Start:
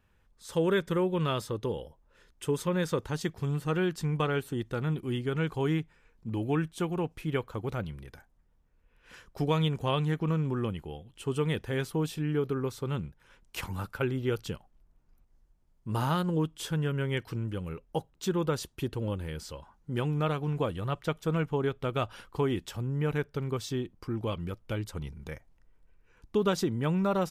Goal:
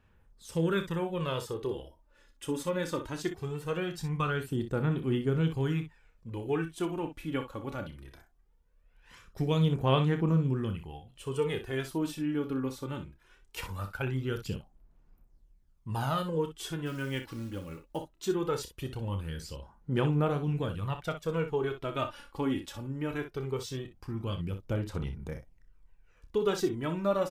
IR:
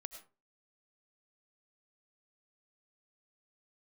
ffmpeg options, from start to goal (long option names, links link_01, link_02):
-filter_complex "[0:a]asplit=3[link_01][link_02][link_03];[link_01]afade=type=out:start_time=16.85:duration=0.02[link_04];[link_02]acrusher=bits=6:mode=log:mix=0:aa=0.000001,afade=type=in:start_time=16.85:duration=0.02,afade=type=out:start_time=17.96:duration=0.02[link_05];[link_03]afade=type=in:start_time=17.96:duration=0.02[link_06];[link_04][link_05][link_06]amix=inputs=3:normalize=0,aphaser=in_gain=1:out_gain=1:delay=3.6:decay=0.54:speed=0.2:type=sinusoidal,asplit=2[link_07][link_08];[link_08]aecho=0:1:30|61:0.316|0.299[link_09];[link_07][link_09]amix=inputs=2:normalize=0,volume=-4dB"